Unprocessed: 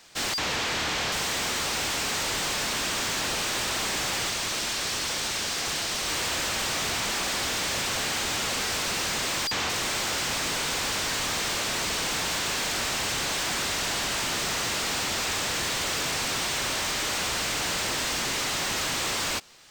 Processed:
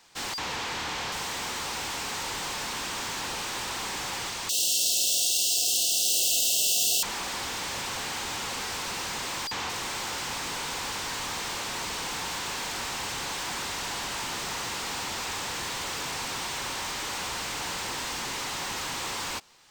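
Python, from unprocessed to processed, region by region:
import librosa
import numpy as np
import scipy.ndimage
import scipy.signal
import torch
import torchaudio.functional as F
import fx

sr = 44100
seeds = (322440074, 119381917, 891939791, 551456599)

y = fx.chain(x, sr, fx.brickwall_bandstop(low_hz=750.0, high_hz=2600.0),
    fx.riaa(side='recording'),
    fx.room_flutter(wall_m=8.8, rt60_s=0.71), at=(4.49, 7.03))
y = fx.peak_eq(y, sr, hz=930.0, db=6.0, octaves=0.51)
y = fx.notch(y, sr, hz=630.0, q=12.0)
y = y * 10.0 ** (-5.5 / 20.0)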